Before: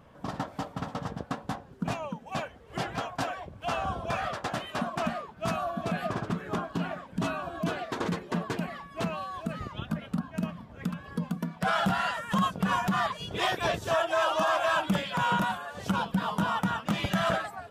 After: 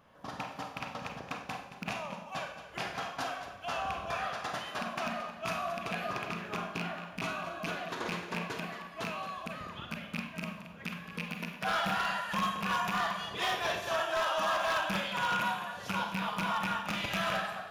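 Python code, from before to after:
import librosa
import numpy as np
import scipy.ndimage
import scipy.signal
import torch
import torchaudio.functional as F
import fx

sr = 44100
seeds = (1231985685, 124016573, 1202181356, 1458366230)

p1 = fx.rattle_buzz(x, sr, strikes_db=-28.0, level_db=-19.0)
p2 = fx.low_shelf(p1, sr, hz=470.0, db=-10.0)
p3 = p2 + fx.echo_single(p2, sr, ms=223, db=-12.0, dry=0)
p4 = fx.rev_schroeder(p3, sr, rt60_s=0.63, comb_ms=31, drr_db=3.5)
p5 = 10.0 ** (-21.0 / 20.0) * (np.abs((p4 / 10.0 ** (-21.0 / 20.0) + 3.0) % 4.0 - 2.0) - 1.0)
p6 = fx.notch(p5, sr, hz=8000.0, q=5.4)
y = p6 * librosa.db_to_amplitude(-3.0)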